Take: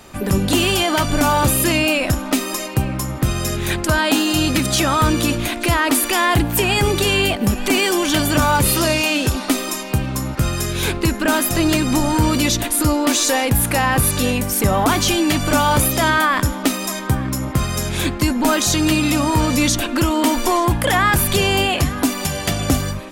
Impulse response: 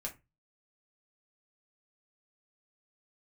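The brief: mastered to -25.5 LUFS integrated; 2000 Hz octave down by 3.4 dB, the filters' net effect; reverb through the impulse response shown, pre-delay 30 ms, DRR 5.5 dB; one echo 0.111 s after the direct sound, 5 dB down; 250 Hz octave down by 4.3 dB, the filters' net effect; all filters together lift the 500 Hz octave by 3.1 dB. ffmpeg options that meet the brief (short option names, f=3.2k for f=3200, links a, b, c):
-filter_complex "[0:a]equalizer=f=250:t=o:g=-8.5,equalizer=f=500:t=o:g=7,equalizer=f=2k:t=o:g=-5,aecho=1:1:111:0.562,asplit=2[a][b];[1:a]atrim=start_sample=2205,adelay=30[c];[b][c]afir=irnorm=-1:irlink=0,volume=-5dB[d];[a][d]amix=inputs=2:normalize=0,volume=-9dB"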